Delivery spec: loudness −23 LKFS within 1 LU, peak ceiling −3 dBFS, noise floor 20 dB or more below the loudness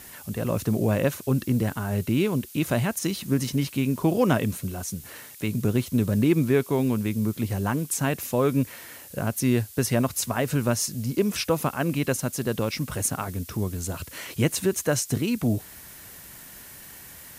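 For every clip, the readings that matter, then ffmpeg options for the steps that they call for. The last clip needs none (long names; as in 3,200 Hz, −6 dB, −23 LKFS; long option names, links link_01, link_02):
background noise floor −45 dBFS; target noise floor −46 dBFS; integrated loudness −25.5 LKFS; sample peak −9.0 dBFS; target loudness −23.0 LKFS
→ -af "afftdn=noise_reduction=6:noise_floor=-45"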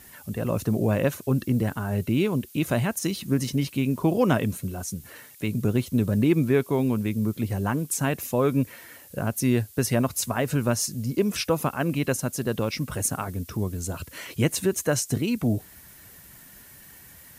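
background noise floor −49 dBFS; integrated loudness −26.0 LKFS; sample peak −9.0 dBFS; target loudness −23.0 LKFS
→ -af "volume=3dB"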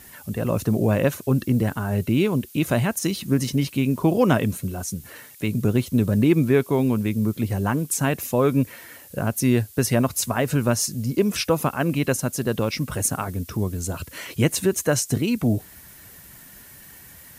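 integrated loudness −23.0 LKFS; sample peak −6.0 dBFS; background noise floor −46 dBFS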